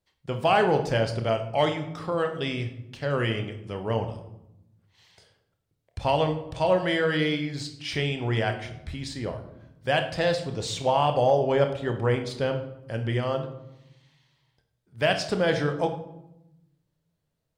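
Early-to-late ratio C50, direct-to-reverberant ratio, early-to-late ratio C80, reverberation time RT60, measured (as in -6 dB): 9.5 dB, 6.0 dB, 12.5 dB, 0.85 s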